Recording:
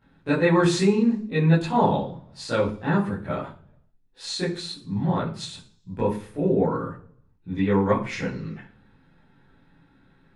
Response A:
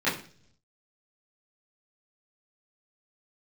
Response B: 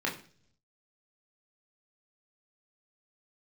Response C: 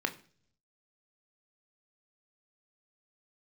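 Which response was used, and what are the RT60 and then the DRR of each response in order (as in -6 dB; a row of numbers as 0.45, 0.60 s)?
A; 0.50, 0.50, 0.50 s; -12.5, -3.0, 6.0 dB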